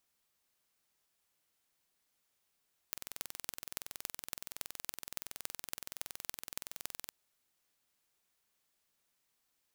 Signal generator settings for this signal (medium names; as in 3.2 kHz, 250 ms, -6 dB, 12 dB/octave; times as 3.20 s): pulse train 21.4 per s, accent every 6, -9 dBFS 4.20 s